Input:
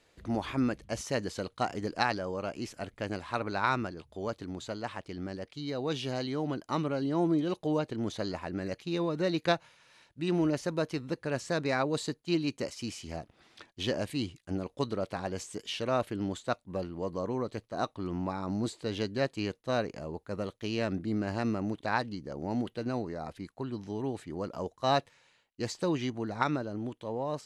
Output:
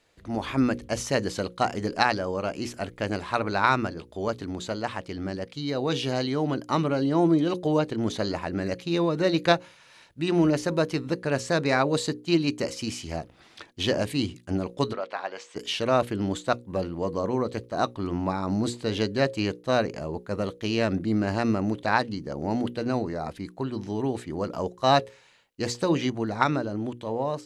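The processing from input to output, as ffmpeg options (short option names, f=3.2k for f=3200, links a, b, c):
-filter_complex "[0:a]asplit=3[a][b][c];[a]afade=t=out:st=14.92:d=0.02[d];[b]highpass=700,lowpass=3.3k,afade=t=in:st=14.92:d=0.02,afade=t=out:st=15.55:d=0.02[e];[c]afade=t=in:st=15.55:d=0.02[f];[d][e][f]amix=inputs=3:normalize=0,dynaudnorm=f=290:g=3:m=7dB,bandreject=f=60:t=h:w=6,bandreject=f=120:t=h:w=6,bandreject=f=180:t=h:w=6,bandreject=f=240:t=h:w=6,bandreject=f=300:t=h:w=6,bandreject=f=360:t=h:w=6,bandreject=f=420:t=h:w=6,bandreject=f=480:t=h:w=6,bandreject=f=540:t=h:w=6"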